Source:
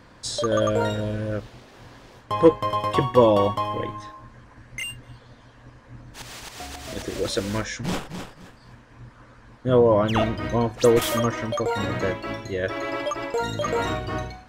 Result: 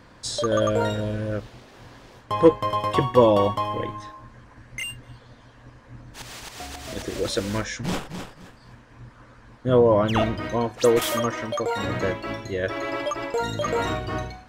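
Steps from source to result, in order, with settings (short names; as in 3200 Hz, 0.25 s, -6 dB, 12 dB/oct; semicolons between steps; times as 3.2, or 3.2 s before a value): 10.42–11.85 low shelf 180 Hz -8 dB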